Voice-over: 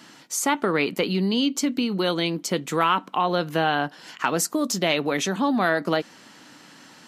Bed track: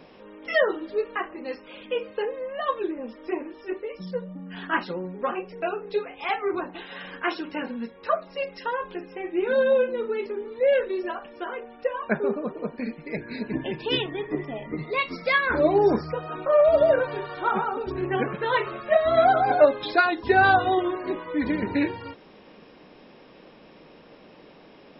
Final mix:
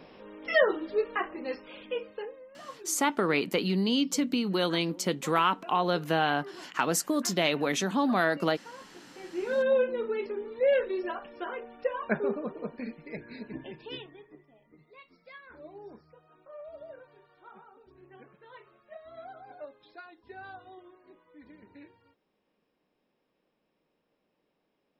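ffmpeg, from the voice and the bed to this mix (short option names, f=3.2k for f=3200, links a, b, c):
-filter_complex "[0:a]adelay=2550,volume=-4dB[a];[1:a]volume=13.5dB,afade=t=out:st=1.54:d=0.92:silence=0.141254,afade=t=in:st=9.05:d=0.73:silence=0.177828,afade=t=out:st=12.07:d=2.33:silence=0.0630957[b];[a][b]amix=inputs=2:normalize=0"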